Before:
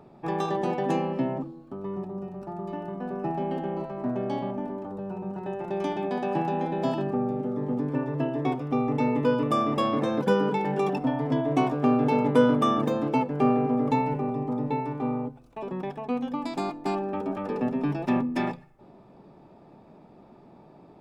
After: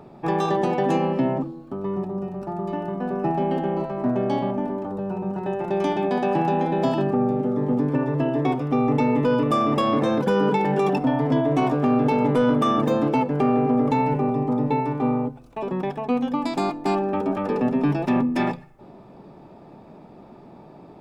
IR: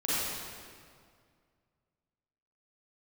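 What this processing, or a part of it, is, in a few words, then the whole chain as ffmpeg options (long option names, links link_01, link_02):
soft clipper into limiter: -af "asoftclip=type=tanh:threshold=-11.5dB,alimiter=limit=-19dB:level=0:latency=1:release=50,volume=6.5dB"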